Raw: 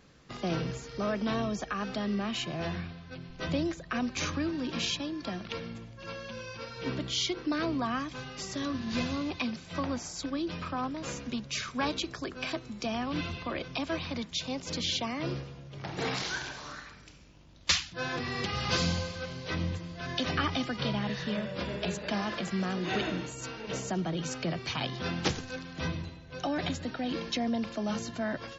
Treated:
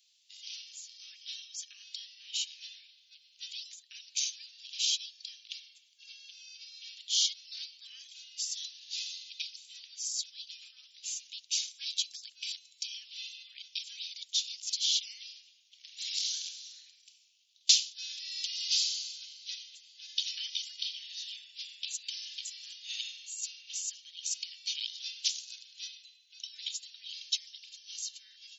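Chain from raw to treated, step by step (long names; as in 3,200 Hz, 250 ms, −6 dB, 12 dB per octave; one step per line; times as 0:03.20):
Butterworth high-pass 3,000 Hz 36 dB per octave
dynamic equaliser 6,500 Hz, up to +7 dB, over −51 dBFS, Q 0.73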